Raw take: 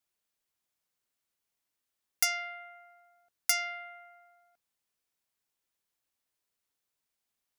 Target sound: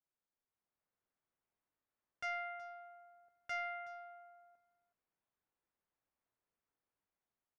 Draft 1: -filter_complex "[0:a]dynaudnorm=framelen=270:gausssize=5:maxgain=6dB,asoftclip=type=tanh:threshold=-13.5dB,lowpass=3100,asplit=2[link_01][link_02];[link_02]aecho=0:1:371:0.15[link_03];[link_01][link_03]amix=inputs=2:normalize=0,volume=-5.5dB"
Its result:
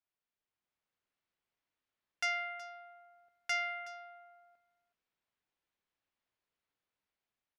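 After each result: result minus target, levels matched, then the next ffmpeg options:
4,000 Hz band +6.0 dB; soft clipping: distortion −6 dB
-filter_complex "[0:a]dynaudnorm=framelen=270:gausssize=5:maxgain=6dB,asoftclip=type=tanh:threshold=-13.5dB,lowpass=1500,asplit=2[link_01][link_02];[link_02]aecho=0:1:371:0.15[link_03];[link_01][link_03]amix=inputs=2:normalize=0,volume=-5.5dB"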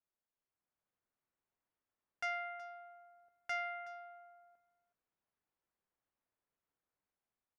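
soft clipping: distortion −6 dB
-filter_complex "[0:a]dynaudnorm=framelen=270:gausssize=5:maxgain=6dB,asoftclip=type=tanh:threshold=-20.5dB,lowpass=1500,asplit=2[link_01][link_02];[link_02]aecho=0:1:371:0.15[link_03];[link_01][link_03]amix=inputs=2:normalize=0,volume=-5.5dB"

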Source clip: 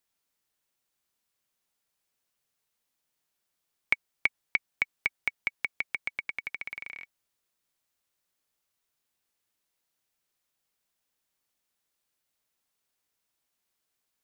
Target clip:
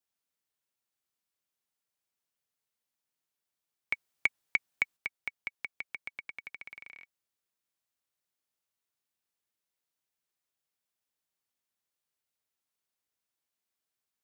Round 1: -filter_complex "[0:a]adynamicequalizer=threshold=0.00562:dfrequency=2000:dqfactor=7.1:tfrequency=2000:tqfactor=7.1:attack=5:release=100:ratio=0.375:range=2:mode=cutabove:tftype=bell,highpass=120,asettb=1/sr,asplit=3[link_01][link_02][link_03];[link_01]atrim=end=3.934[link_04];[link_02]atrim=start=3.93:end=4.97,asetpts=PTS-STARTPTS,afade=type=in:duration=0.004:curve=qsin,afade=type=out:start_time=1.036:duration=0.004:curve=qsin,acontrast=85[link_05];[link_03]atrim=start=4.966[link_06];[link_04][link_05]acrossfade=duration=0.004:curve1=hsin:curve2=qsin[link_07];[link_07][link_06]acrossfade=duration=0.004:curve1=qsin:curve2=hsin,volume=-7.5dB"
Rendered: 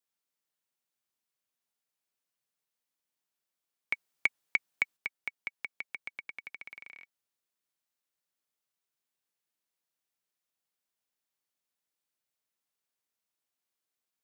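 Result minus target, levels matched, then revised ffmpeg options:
125 Hz band −3.0 dB
-filter_complex "[0:a]adynamicequalizer=threshold=0.00562:dfrequency=2000:dqfactor=7.1:tfrequency=2000:tqfactor=7.1:attack=5:release=100:ratio=0.375:range=2:mode=cutabove:tftype=bell,highpass=52,asettb=1/sr,asplit=3[link_01][link_02][link_03];[link_01]atrim=end=3.934[link_04];[link_02]atrim=start=3.93:end=4.97,asetpts=PTS-STARTPTS,afade=type=in:duration=0.004:curve=qsin,afade=type=out:start_time=1.036:duration=0.004:curve=qsin,acontrast=85[link_05];[link_03]atrim=start=4.966[link_06];[link_04][link_05]acrossfade=duration=0.004:curve1=hsin:curve2=qsin[link_07];[link_07][link_06]acrossfade=duration=0.004:curve1=qsin:curve2=hsin,volume=-7.5dB"

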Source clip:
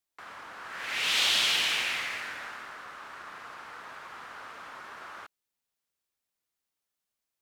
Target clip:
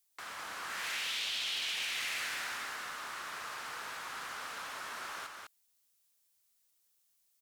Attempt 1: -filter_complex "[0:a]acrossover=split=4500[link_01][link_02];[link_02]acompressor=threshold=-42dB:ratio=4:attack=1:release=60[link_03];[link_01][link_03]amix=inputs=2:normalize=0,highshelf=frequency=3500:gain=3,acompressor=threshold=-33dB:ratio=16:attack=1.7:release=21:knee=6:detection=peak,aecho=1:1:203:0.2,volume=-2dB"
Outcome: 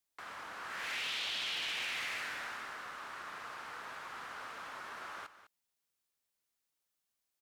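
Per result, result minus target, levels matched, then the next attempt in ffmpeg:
echo-to-direct −9.5 dB; 8,000 Hz band −5.5 dB
-filter_complex "[0:a]acrossover=split=4500[link_01][link_02];[link_02]acompressor=threshold=-42dB:ratio=4:attack=1:release=60[link_03];[link_01][link_03]amix=inputs=2:normalize=0,highshelf=frequency=3500:gain=3,acompressor=threshold=-33dB:ratio=16:attack=1.7:release=21:knee=6:detection=peak,aecho=1:1:203:0.596,volume=-2dB"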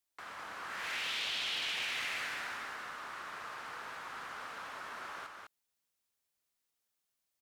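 8,000 Hz band −5.5 dB
-filter_complex "[0:a]acrossover=split=4500[link_01][link_02];[link_02]acompressor=threshold=-42dB:ratio=4:attack=1:release=60[link_03];[link_01][link_03]amix=inputs=2:normalize=0,highshelf=frequency=3500:gain=15,acompressor=threshold=-33dB:ratio=16:attack=1.7:release=21:knee=6:detection=peak,aecho=1:1:203:0.596,volume=-2dB"

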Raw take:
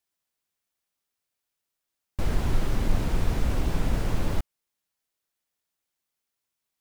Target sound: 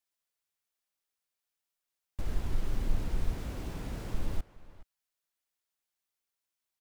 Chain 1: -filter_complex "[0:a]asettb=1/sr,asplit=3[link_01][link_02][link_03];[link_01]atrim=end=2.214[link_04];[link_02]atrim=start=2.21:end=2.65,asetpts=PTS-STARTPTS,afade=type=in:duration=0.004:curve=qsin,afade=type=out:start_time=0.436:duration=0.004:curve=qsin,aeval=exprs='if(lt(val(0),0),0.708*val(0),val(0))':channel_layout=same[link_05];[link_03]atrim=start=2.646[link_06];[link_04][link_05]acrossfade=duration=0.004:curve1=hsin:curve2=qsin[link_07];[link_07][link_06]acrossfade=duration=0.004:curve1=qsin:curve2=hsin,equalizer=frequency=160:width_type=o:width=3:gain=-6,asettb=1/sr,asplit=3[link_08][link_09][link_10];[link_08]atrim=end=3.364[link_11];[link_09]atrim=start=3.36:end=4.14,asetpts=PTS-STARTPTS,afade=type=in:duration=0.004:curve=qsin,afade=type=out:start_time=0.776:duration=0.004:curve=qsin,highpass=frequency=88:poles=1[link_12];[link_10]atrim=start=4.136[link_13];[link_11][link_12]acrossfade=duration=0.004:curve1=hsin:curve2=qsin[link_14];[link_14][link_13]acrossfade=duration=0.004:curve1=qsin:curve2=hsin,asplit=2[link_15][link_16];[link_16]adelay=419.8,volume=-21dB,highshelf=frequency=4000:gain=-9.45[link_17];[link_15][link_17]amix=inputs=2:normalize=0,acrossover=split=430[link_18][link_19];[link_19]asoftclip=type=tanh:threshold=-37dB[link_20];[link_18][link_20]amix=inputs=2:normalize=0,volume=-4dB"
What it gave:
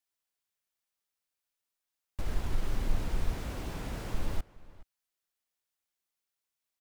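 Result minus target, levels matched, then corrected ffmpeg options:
soft clipping: distortion −6 dB
-filter_complex "[0:a]asettb=1/sr,asplit=3[link_01][link_02][link_03];[link_01]atrim=end=2.214[link_04];[link_02]atrim=start=2.21:end=2.65,asetpts=PTS-STARTPTS,afade=type=in:duration=0.004:curve=qsin,afade=type=out:start_time=0.436:duration=0.004:curve=qsin,aeval=exprs='if(lt(val(0),0),0.708*val(0),val(0))':channel_layout=same[link_05];[link_03]atrim=start=2.646[link_06];[link_04][link_05]acrossfade=duration=0.004:curve1=hsin:curve2=qsin[link_07];[link_07][link_06]acrossfade=duration=0.004:curve1=qsin:curve2=hsin,equalizer=frequency=160:width_type=o:width=3:gain=-6,asettb=1/sr,asplit=3[link_08][link_09][link_10];[link_08]atrim=end=3.364[link_11];[link_09]atrim=start=3.36:end=4.14,asetpts=PTS-STARTPTS,afade=type=in:duration=0.004:curve=qsin,afade=type=out:start_time=0.776:duration=0.004:curve=qsin,highpass=frequency=88:poles=1[link_12];[link_10]atrim=start=4.136[link_13];[link_11][link_12]acrossfade=duration=0.004:curve1=hsin:curve2=qsin[link_14];[link_14][link_13]acrossfade=duration=0.004:curve1=qsin:curve2=hsin,asplit=2[link_15][link_16];[link_16]adelay=419.8,volume=-21dB,highshelf=frequency=4000:gain=-9.45[link_17];[link_15][link_17]amix=inputs=2:normalize=0,acrossover=split=430[link_18][link_19];[link_19]asoftclip=type=tanh:threshold=-44dB[link_20];[link_18][link_20]amix=inputs=2:normalize=0,volume=-4dB"

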